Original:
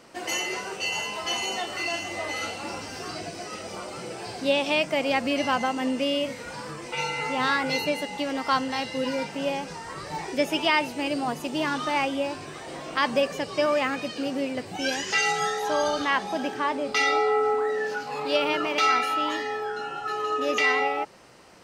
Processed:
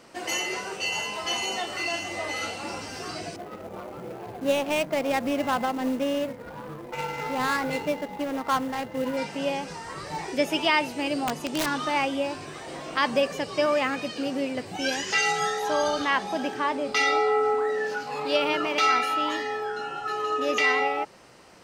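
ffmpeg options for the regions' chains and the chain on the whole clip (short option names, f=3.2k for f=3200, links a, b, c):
-filter_complex "[0:a]asettb=1/sr,asplit=3[a][b][c];[a]atrim=end=3.364[d];[b]atrim=start=3.36:end=9.17,asetpts=PTS-STARTPTS,afade=t=in:d=0.004:c=qsin,afade=t=out:st=5.806:d=0.004:c=qsin,aemphasis=mode=reproduction:type=75kf,adynamicsmooth=sensitivity=4.5:basefreq=600,acrusher=bits=5:mode=log:mix=0:aa=0.000001[e];[c]atrim=start=9.166[f];[d][e]acrossfade=d=0.004:c1=hsin:c2=qsin[g];[g][f]acrossfade=d=0.004:c1=qsin:c2=hsin,asettb=1/sr,asplit=3[h][i][j];[h]atrim=end=11.244[k];[i]atrim=start=11.24:end=11.66,asetpts=PTS-STARTPTS,afade=t=in:d=0.004:c=qsin,afade=t=out:st=0.416:d=0.004:c=qsin,lowpass=12k,aeval=exprs='(mod(8.91*val(0)+1,2)-1)/8.91':c=same[l];[j]atrim=start=11.656[m];[k][l]acrossfade=d=0.004:c1=hsin:c2=qsin[n];[n][m]acrossfade=d=0.004:c1=qsin:c2=hsin"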